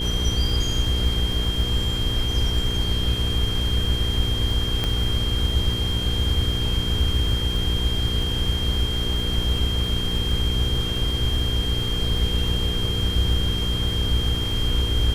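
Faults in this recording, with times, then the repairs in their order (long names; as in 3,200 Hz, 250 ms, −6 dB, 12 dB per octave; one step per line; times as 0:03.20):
surface crackle 35 per second −30 dBFS
mains hum 60 Hz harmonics 8 −28 dBFS
whistle 3,200 Hz −27 dBFS
0:04.84: click −10 dBFS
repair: click removal
hum removal 60 Hz, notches 8
notch filter 3,200 Hz, Q 30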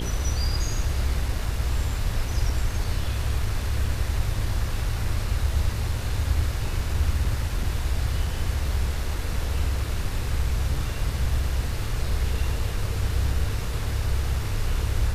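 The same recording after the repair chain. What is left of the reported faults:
none of them is left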